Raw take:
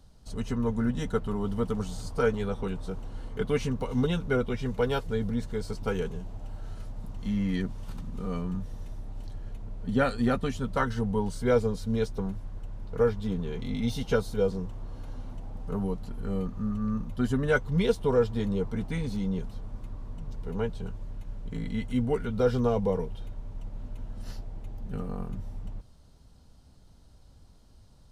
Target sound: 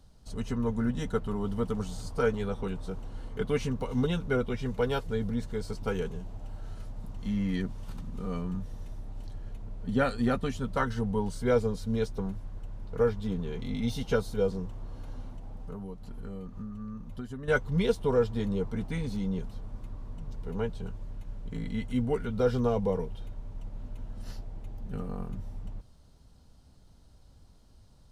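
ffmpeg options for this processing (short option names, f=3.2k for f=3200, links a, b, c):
-filter_complex "[0:a]asettb=1/sr,asplit=3[a][b][c];[a]atrim=end=15.274[d];[b]atrim=start=15.27:end=17.48,asetpts=PTS-STARTPTS,afade=t=in:d=0.004:c=qsin,afade=t=out:st=2.206:d=0.004:c=qsin,acompressor=threshold=-35dB:ratio=6[e];[c]atrim=start=17.476[f];[d][e]acrossfade=d=0.004:c1=hsin:c2=qsin[g];[g][f]acrossfade=d=0.004:c1=qsin:c2=hsin,volume=-1.5dB"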